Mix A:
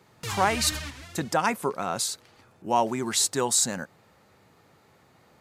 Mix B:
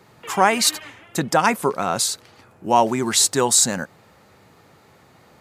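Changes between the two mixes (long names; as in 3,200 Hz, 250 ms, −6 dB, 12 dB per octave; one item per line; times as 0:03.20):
speech +7.0 dB
background: add Chebyshev band-pass filter 300–3,200 Hz, order 5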